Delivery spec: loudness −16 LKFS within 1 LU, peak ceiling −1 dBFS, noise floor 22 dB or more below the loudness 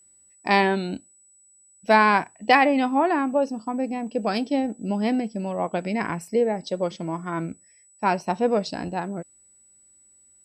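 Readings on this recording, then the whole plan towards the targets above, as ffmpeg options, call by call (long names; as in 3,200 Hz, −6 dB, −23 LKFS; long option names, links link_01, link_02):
interfering tone 7,900 Hz; level of the tone −54 dBFS; integrated loudness −23.5 LKFS; sample peak −4.5 dBFS; target loudness −16.0 LKFS
→ -af "bandreject=frequency=7900:width=30"
-af "volume=7.5dB,alimiter=limit=-1dB:level=0:latency=1"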